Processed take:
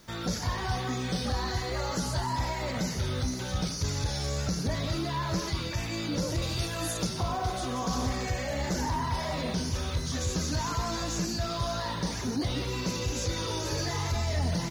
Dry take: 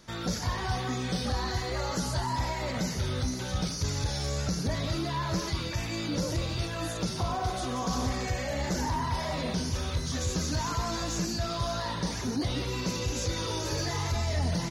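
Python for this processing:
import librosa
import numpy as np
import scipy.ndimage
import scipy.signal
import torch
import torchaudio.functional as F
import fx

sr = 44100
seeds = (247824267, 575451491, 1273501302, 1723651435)

y = fx.high_shelf(x, sr, hz=6800.0, db=11.5, at=(6.42, 7.07))
y = fx.dmg_noise_colour(y, sr, seeds[0], colour='blue', level_db=-66.0)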